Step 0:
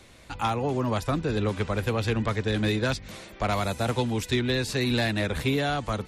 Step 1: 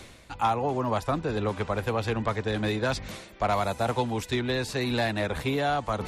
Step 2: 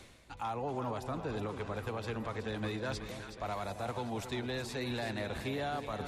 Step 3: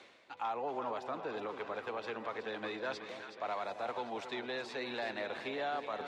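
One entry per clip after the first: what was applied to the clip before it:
dynamic EQ 830 Hz, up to +8 dB, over -42 dBFS, Q 0.91; reverse; upward compressor, threshold -24 dBFS; reverse; gain -4 dB
limiter -19.5 dBFS, peak gain reduction 5.5 dB; split-band echo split 810 Hz, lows 0.269 s, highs 0.372 s, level -9 dB; gain -8.5 dB
BPF 390–3900 Hz; gain +1 dB

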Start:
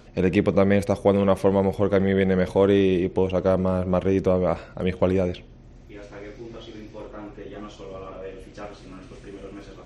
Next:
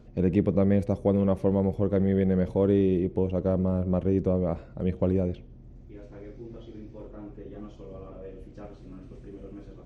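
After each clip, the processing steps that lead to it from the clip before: tilt shelf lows +8 dB, about 640 Hz; gain -8 dB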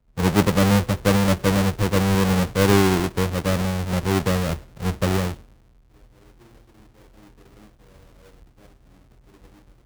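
half-waves squared off; three-band expander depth 70%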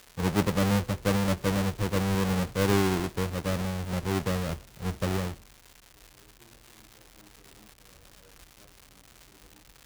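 crackle 320/s -30 dBFS; gain -7.5 dB

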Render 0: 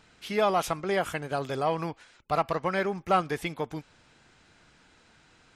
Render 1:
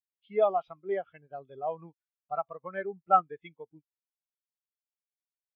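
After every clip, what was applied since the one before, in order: LPF 4300 Hz 24 dB/oct; high shelf 2500 Hz +12 dB; spectral expander 2.5:1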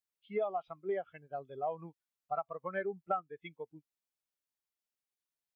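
compressor 8:1, threshold -32 dBFS, peak gain reduction 16.5 dB; gain +1 dB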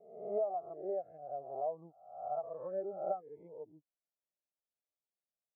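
spectral swells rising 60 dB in 0.73 s; ladder low-pass 740 Hz, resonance 55%; gain +1 dB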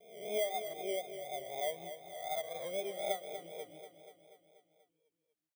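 FFT order left unsorted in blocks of 16 samples; vibrato 4 Hz 57 cents; feedback echo 0.242 s, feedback 60%, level -10 dB

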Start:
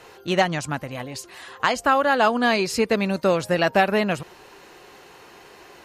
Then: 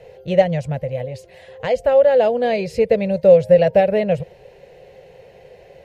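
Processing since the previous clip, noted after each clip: EQ curve 160 Hz 0 dB, 310 Hz -21 dB, 520 Hz +6 dB, 1200 Hz -28 dB, 2000 Hz -11 dB, 6600 Hz -21 dB; gain +8 dB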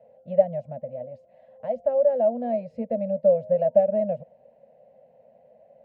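double band-pass 380 Hz, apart 1.4 oct; gain -1 dB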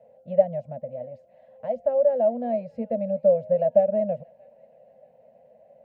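thin delay 0.631 s, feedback 50%, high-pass 1400 Hz, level -21 dB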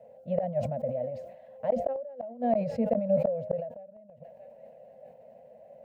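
flipped gate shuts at -17 dBFS, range -32 dB; sustainer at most 66 dB/s; gain +2 dB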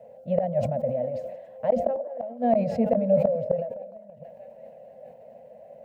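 delay with a stepping band-pass 0.102 s, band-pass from 260 Hz, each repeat 0.7 oct, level -9.5 dB; gain +4.5 dB

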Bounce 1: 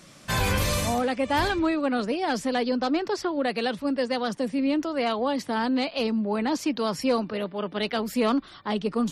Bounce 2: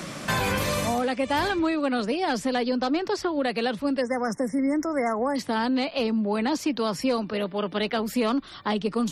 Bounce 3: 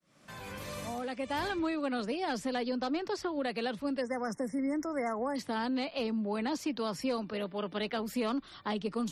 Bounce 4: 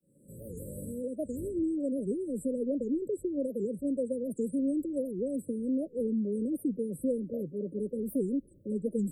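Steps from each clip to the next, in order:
spectral delete 4.01–5.36, 2200–5100 Hz; three-band squash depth 70%
opening faded in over 1.58 s; gain -8 dB
brick-wall FIR band-stop 580–7600 Hz; record warp 78 rpm, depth 250 cents; gain +3 dB

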